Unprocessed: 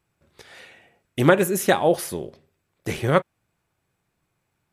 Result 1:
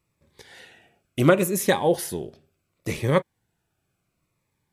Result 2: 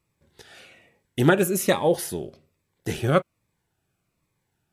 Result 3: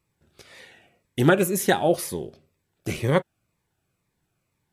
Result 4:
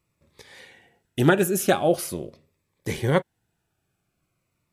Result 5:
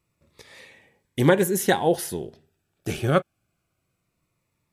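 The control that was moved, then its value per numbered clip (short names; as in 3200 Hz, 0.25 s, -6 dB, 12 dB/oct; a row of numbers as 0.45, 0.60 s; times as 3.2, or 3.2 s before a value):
cascading phaser, rate: 0.7, 1.2, 2, 0.43, 0.23 Hz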